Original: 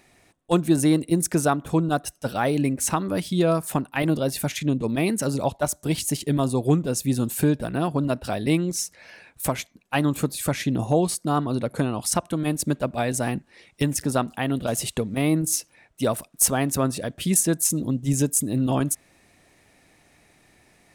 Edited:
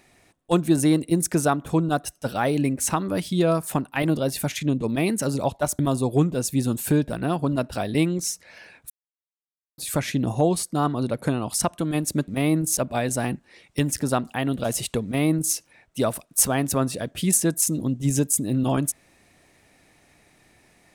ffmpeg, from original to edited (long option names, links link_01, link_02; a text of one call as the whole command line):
ffmpeg -i in.wav -filter_complex "[0:a]asplit=6[link_01][link_02][link_03][link_04][link_05][link_06];[link_01]atrim=end=5.792[link_07];[link_02]atrim=start=6.308:end=9.42,asetpts=PTS-STARTPTS,afade=type=out:start_time=3.108:duration=0.004:curve=hsin[link_08];[link_03]atrim=start=9.42:end=10.3,asetpts=PTS-STARTPTS,volume=0[link_09];[link_04]atrim=start=10.3:end=12.802,asetpts=PTS-STARTPTS,afade=type=in:duration=0.004:curve=hsin[link_10];[link_05]atrim=start=15.078:end=15.572[link_11];[link_06]atrim=start=12.798[link_12];[link_08][link_09][link_10]concat=n=3:v=0:a=1[link_13];[link_07][link_13]acrossfade=duration=0.004:curve1=hsin:curve2=hsin[link_14];[link_14][link_11]acrossfade=duration=0.004:curve1=hsin:curve2=hsin[link_15];[link_15][link_12]acrossfade=duration=0.004:curve1=hsin:curve2=hsin" out.wav